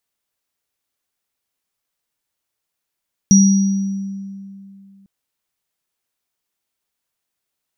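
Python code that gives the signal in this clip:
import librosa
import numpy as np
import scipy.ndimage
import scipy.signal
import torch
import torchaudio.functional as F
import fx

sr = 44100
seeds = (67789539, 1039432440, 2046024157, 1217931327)

y = fx.additive_free(sr, length_s=1.75, hz=196.0, level_db=-6, upper_db=(-5.5,), decay_s=2.62, upper_decays_s=(1.08,), upper_hz=(5770.0,))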